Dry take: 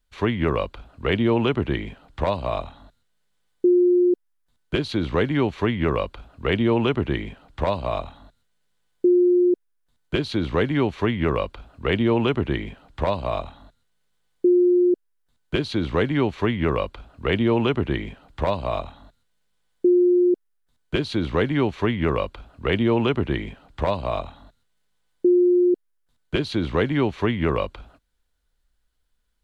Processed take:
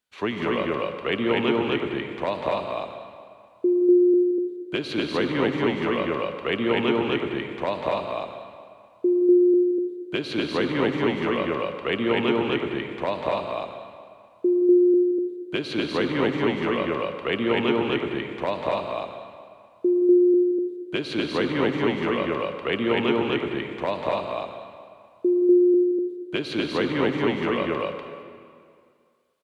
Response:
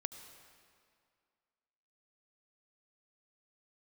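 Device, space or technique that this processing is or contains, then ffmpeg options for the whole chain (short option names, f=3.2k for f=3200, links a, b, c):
stadium PA: -filter_complex "[0:a]highpass=210,equalizer=f=2.6k:t=o:w=0.45:g=3.5,aecho=1:1:172|244.9:0.282|0.891[a];[1:a]atrim=start_sample=2205[b];[a][b]afir=irnorm=-1:irlink=0,volume=-1dB"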